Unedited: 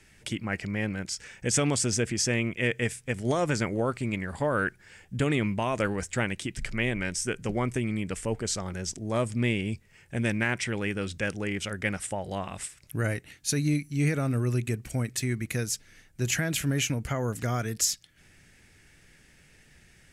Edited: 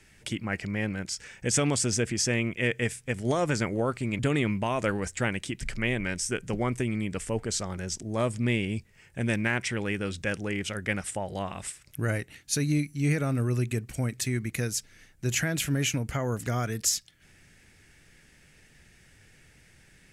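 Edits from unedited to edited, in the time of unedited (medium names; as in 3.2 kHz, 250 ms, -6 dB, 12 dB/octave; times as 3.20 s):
4.19–5.15 s: delete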